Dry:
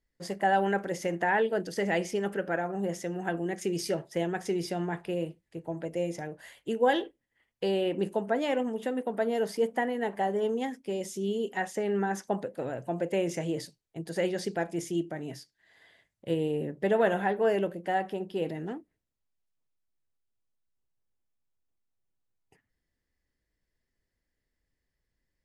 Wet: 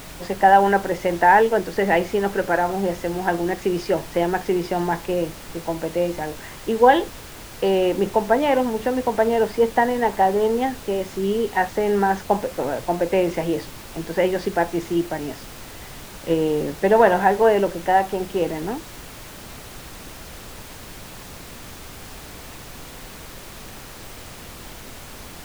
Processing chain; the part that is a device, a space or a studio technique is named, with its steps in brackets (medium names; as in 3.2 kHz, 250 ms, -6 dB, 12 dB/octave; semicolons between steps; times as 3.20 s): horn gramophone (band-pass 180–3100 Hz; peaking EQ 920 Hz +8 dB 0.43 oct; wow and flutter 24 cents; pink noise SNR 16 dB); trim +9 dB